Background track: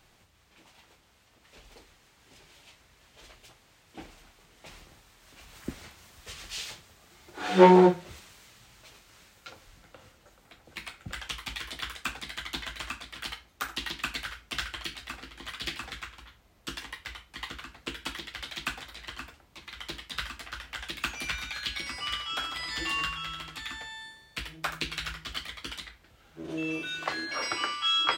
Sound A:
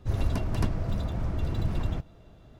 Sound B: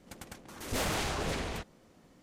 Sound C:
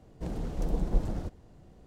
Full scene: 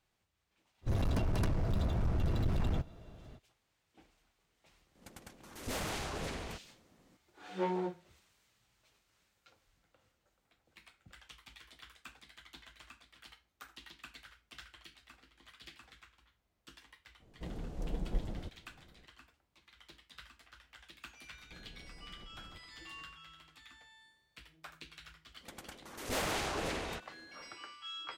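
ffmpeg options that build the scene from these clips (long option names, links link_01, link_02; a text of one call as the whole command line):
ffmpeg -i bed.wav -i cue0.wav -i cue1.wav -i cue2.wav -filter_complex "[2:a]asplit=2[link_01][link_02];[3:a]asplit=2[link_03][link_04];[0:a]volume=-18.5dB[link_05];[1:a]asoftclip=type=hard:threshold=-27dB[link_06];[link_04]acompressor=threshold=-35dB:ratio=6:attack=3.2:release=140:knee=1:detection=peak[link_07];[link_02]bass=frequency=250:gain=-6,treble=frequency=4000:gain=-2[link_08];[link_06]atrim=end=2.59,asetpts=PTS-STARTPTS,volume=-0.5dB,afade=type=in:duration=0.05,afade=type=out:start_time=2.54:duration=0.05,adelay=810[link_09];[link_01]atrim=end=2.22,asetpts=PTS-STARTPTS,volume=-6dB,afade=type=in:duration=0.004:curve=hsin,afade=type=out:start_time=2.216:duration=0.004:curve=hsin,adelay=4950[link_10];[link_03]atrim=end=1.86,asetpts=PTS-STARTPTS,volume=-8dB,afade=type=in:duration=0.004:curve=hsin,afade=type=out:start_time=1.856:duration=0.004:curve=hsin,adelay=17200[link_11];[link_07]atrim=end=1.86,asetpts=PTS-STARTPTS,volume=-15.5dB,afade=type=in:duration=0.004:curve=hsin,afade=type=out:start_time=1.856:duration=0.004:curve=hsin,adelay=21300[link_12];[link_08]atrim=end=2.22,asetpts=PTS-STARTPTS,volume=-1.5dB,afade=type=in:duration=0.1,afade=type=out:start_time=2.12:duration=0.1,adelay=25370[link_13];[link_05][link_09][link_10][link_11][link_12][link_13]amix=inputs=6:normalize=0" out.wav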